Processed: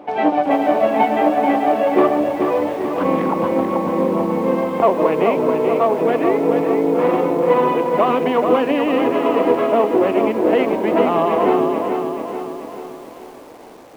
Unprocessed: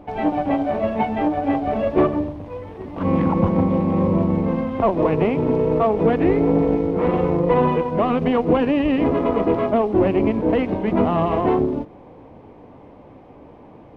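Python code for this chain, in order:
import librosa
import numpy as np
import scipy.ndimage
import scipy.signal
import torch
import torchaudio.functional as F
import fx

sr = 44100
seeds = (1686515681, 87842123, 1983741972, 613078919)

y = fx.rider(x, sr, range_db=10, speed_s=0.5)
y = scipy.signal.sosfilt(scipy.signal.butter(2, 330.0, 'highpass', fs=sr, output='sos'), y)
y = fx.echo_crushed(y, sr, ms=435, feedback_pct=55, bits=8, wet_db=-5.5)
y = F.gain(torch.from_numpy(y), 4.0).numpy()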